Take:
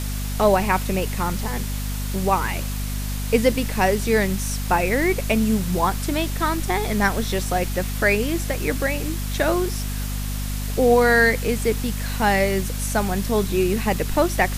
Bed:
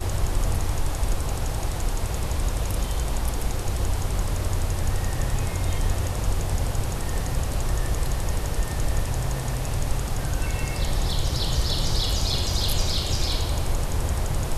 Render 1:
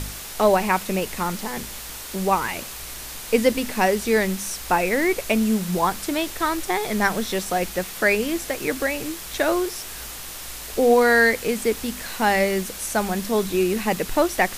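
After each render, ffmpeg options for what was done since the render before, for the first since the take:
-af "bandreject=f=50:t=h:w=4,bandreject=f=100:t=h:w=4,bandreject=f=150:t=h:w=4,bandreject=f=200:t=h:w=4,bandreject=f=250:t=h:w=4"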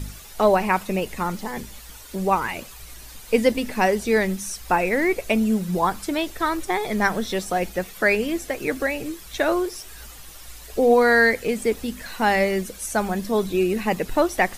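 -af "afftdn=nr=11:nf=-36"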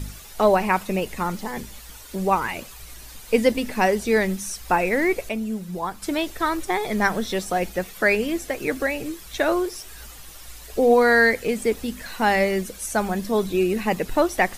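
-filter_complex "[0:a]asplit=3[a][b][c];[a]atrim=end=5.292[d];[b]atrim=start=5.288:end=6.022,asetpts=PTS-STARTPTS,volume=-7dB[e];[c]atrim=start=6.018[f];[d][e]acrossfade=d=0.004:c1=hsin:c2=hsin[g];[g][f]acrossfade=d=0.004:c1=hsin:c2=hsin"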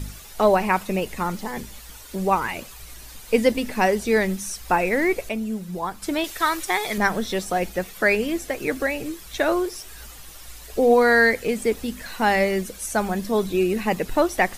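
-filter_complex "[0:a]asettb=1/sr,asplit=3[a][b][c];[a]atrim=end=6.244[d];[b]atrim=start=6.24:end=6.98,asetpts=PTS-STARTPTS,afade=t=in:d=0.004:c=qsin,afade=t=out:st=0.736:d=0.004:c=qsin,tiltshelf=f=800:g=-6.5[e];[c]atrim=start=6.976[f];[d][e]acrossfade=d=0.004:c1=hsin:c2=qsin[g];[g][f]acrossfade=d=0.004:c1=qsin:c2=hsin"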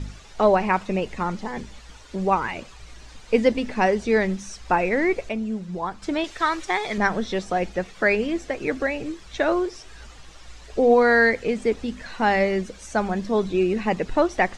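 -af "lowpass=f=7.3k:w=0.5412,lowpass=f=7.3k:w=1.3066,highshelf=f=3.7k:g=-6.5"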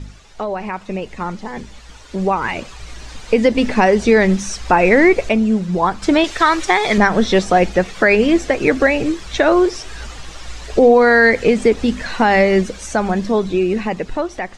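-af "alimiter=limit=-14.5dB:level=0:latency=1:release=153,dynaudnorm=f=720:g=7:m=14.5dB"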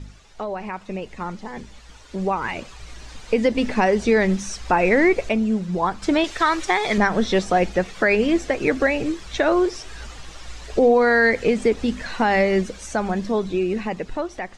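-af "volume=-5.5dB"

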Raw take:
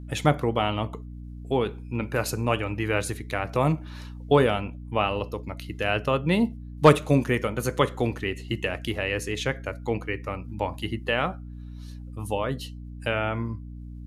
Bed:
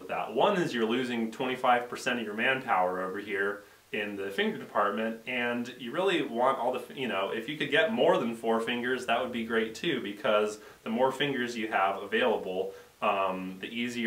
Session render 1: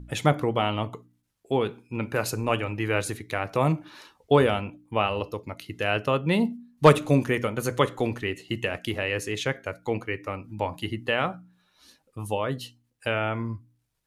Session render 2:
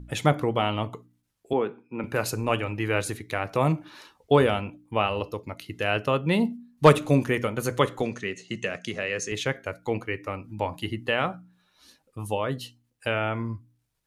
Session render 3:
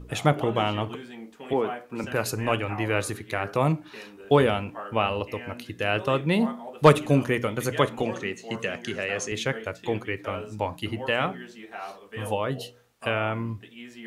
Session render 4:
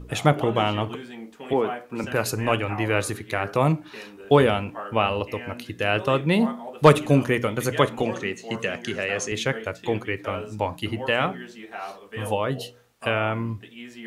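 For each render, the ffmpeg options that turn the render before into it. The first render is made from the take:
-af "bandreject=f=60:t=h:w=4,bandreject=f=120:t=h:w=4,bandreject=f=180:t=h:w=4,bandreject=f=240:t=h:w=4,bandreject=f=300:t=h:w=4"
-filter_complex "[0:a]asettb=1/sr,asplit=3[a][b][c];[a]atrim=end=1.534[d];[b]atrim=start=1.53:end=2.04,asetpts=PTS-STARTPTS,afade=t=in:d=0.004:c=qsin,afade=t=out:st=0.506:d=0.004:c=qsin,acrossover=split=160 2400:gain=0.0631 1 0.0891[e][f][g];[e][f][g]amix=inputs=3:normalize=0[h];[c]atrim=start=2.036[i];[d][h]acrossfade=d=0.004:c1=hsin:c2=qsin[j];[j][i]acrossfade=d=0.004:c1=qsin:c2=hsin,asettb=1/sr,asplit=3[k][l][m];[k]atrim=end=8.024[n];[l]atrim=start=8.02:end=9.32,asetpts=PTS-STARTPTS,afade=t=in:d=0.004:c=qsin,afade=t=out:st=1.296:d=0.004:c=qsin,highpass=160,equalizer=f=180:t=q:w=4:g=6,equalizer=f=310:t=q:w=4:g=-8,equalizer=f=880:t=q:w=4:g=-10,equalizer=f=3k:t=q:w=4:g=-4,equalizer=f=6.3k:t=q:w=4:g=10,lowpass=f=8.7k:w=0.5412,lowpass=f=8.7k:w=1.3066[o];[m]atrim=start=9.316[p];[n][o]acrossfade=d=0.004:c1=hsin:c2=qsin[q];[q][p]acrossfade=d=0.004:c1=qsin:c2=hsin"
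-filter_complex "[1:a]volume=-10.5dB[a];[0:a][a]amix=inputs=2:normalize=0"
-af "volume=2.5dB,alimiter=limit=-3dB:level=0:latency=1"

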